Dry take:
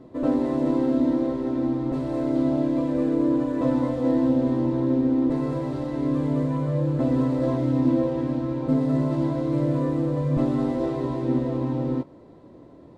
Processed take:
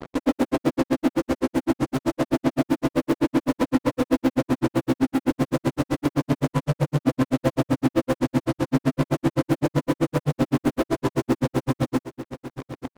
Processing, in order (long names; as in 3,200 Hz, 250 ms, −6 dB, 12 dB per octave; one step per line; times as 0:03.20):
in parallel at −8 dB: fuzz pedal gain 50 dB, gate −42 dBFS
on the sum: granular cloud 70 ms, grains 7.8 per second, spray 14 ms, pitch spread up and down by 0 semitones
single-tap delay 891 ms −12.5 dB